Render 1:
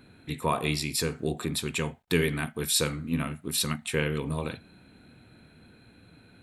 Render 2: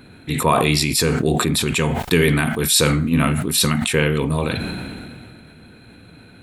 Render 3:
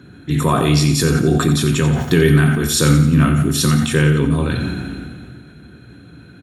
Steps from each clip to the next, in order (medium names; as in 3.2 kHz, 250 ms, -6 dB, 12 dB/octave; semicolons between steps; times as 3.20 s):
loudness maximiser +12 dB; decay stretcher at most 24 dB/s; trim -2.5 dB
feedback delay 88 ms, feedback 50%, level -10 dB; reverberation RT60 0.55 s, pre-delay 3 ms, DRR 8 dB; trim -6 dB